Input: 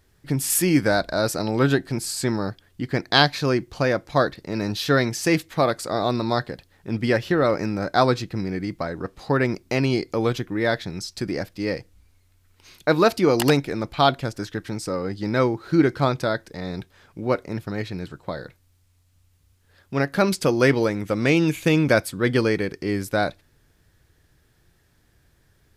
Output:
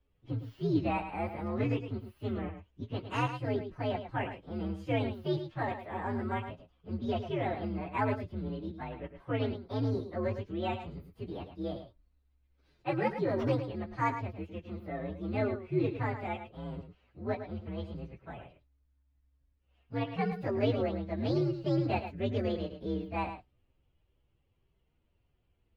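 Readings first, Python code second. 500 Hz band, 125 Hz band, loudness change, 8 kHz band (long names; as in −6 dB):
−12.0 dB, −9.0 dB, −12.0 dB, below −30 dB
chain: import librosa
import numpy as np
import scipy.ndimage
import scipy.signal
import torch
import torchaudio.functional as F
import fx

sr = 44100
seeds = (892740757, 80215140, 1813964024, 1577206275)

y = fx.partial_stretch(x, sr, pct=128)
y = fx.air_absorb(y, sr, metres=290.0)
y = y + 10.0 ** (-9.5 / 20.0) * np.pad(y, (int(108 * sr / 1000.0), 0))[:len(y)]
y = y * librosa.db_to_amplitude(-8.5)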